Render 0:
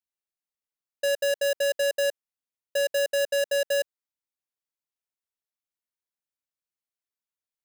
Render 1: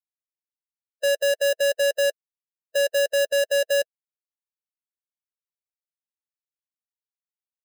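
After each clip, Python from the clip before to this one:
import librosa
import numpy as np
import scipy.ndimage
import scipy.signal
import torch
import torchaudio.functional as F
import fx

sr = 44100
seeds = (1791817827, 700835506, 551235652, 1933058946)

y = fx.bin_expand(x, sr, power=2.0)
y = F.gain(torch.from_numpy(y), 4.0).numpy()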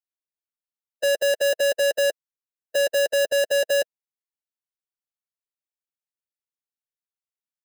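y = fx.leveller(x, sr, passes=3)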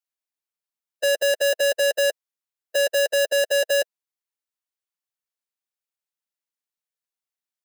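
y = fx.highpass(x, sr, hz=430.0, slope=6)
y = F.gain(torch.from_numpy(y), 2.0).numpy()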